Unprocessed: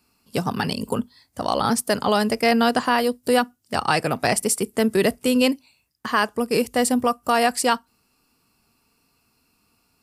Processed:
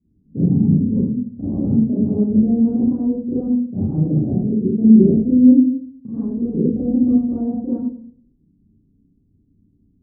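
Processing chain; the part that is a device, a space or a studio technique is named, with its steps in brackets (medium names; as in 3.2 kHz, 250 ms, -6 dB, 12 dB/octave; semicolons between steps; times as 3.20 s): next room (low-pass 280 Hz 24 dB/octave; reverberation RT60 0.55 s, pre-delay 32 ms, DRR -10.5 dB); trim +1.5 dB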